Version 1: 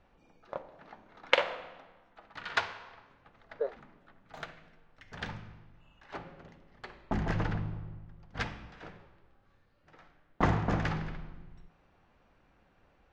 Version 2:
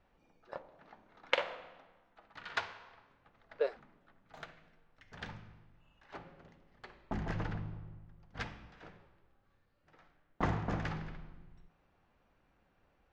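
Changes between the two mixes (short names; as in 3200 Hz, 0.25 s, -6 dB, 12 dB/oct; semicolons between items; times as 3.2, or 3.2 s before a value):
speech: remove running mean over 17 samples; background -6.0 dB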